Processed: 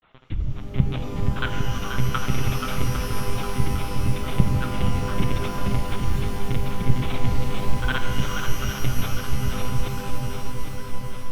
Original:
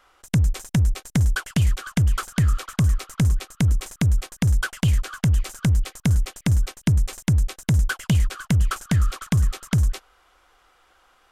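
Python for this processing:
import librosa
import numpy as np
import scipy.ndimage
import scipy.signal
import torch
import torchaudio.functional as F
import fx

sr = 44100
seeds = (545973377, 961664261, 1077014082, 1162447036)

p1 = fx.notch(x, sr, hz=1700.0, q=5.3)
p2 = fx.over_compress(p1, sr, threshold_db=-25.0, ratio=-1.0)
p3 = p1 + (p2 * librosa.db_to_amplitude(2.0))
p4 = fx.granulator(p3, sr, seeds[0], grain_ms=100.0, per_s=20.0, spray_ms=100.0, spread_st=0)
p5 = np.where(np.abs(p4) >= 10.0 ** (-47.5 / 20.0), p4, 0.0)
p6 = fx.lpc_monotone(p5, sr, seeds[1], pitch_hz=130.0, order=10)
p7 = p6 + fx.echo_swing(p6, sr, ms=805, ratio=1.5, feedback_pct=55, wet_db=-7, dry=0)
p8 = fx.rev_shimmer(p7, sr, seeds[2], rt60_s=3.1, semitones=12, shimmer_db=-2, drr_db=6.0)
y = p8 * librosa.db_to_amplitude(-8.0)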